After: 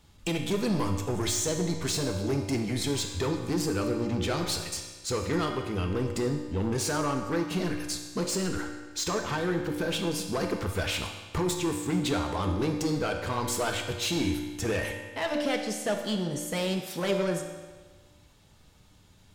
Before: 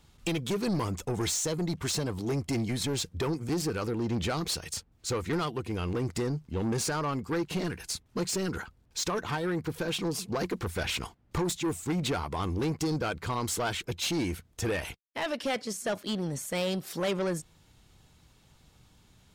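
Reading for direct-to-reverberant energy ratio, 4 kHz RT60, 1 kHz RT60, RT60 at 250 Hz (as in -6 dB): 2.5 dB, 1.3 s, 1.4 s, 1.4 s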